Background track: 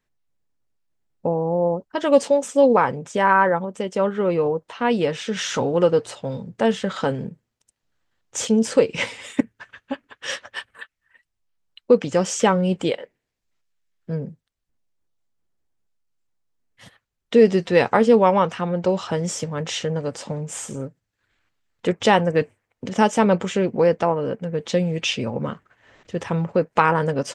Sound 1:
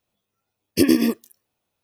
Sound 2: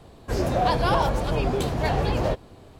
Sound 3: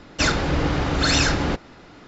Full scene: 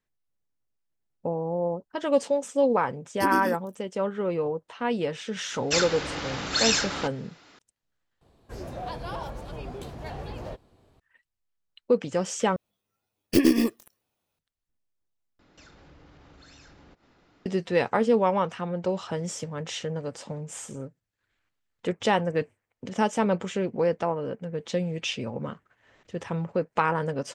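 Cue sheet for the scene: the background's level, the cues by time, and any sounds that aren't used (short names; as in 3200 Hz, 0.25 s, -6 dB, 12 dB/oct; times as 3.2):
background track -7 dB
2.43 add 1 -12 dB
5.52 add 3 -8 dB + tilt +3 dB/oct
8.21 replace with 2 -13.5 dB
12.56 replace with 1 -3 dB + tracing distortion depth 0.13 ms
15.39 replace with 3 -16 dB + compressor 4:1, threshold -37 dBFS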